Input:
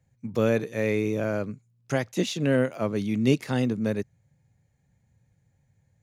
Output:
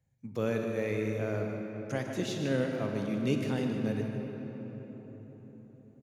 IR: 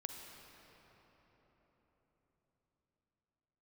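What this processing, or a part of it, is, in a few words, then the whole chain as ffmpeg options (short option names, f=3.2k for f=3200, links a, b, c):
cave: -filter_complex "[0:a]aecho=1:1:150:0.299[a];[1:a]atrim=start_sample=2205[b];[a][b]afir=irnorm=-1:irlink=0,volume=-4.5dB"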